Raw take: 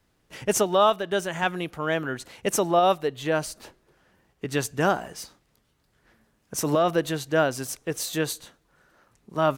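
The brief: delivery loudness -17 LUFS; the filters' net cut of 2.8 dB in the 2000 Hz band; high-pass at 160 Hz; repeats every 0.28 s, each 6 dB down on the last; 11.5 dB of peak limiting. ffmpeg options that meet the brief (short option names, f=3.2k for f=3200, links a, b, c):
-af "highpass=160,equalizer=f=2k:t=o:g=-4,alimiter=limit=-20dB:level=0:latency=1,aecho=1:1:280|560|840|1120|1400|1680:0.501|0.251|0.125|0.0626|0.0313|0.0157,volume=14dB"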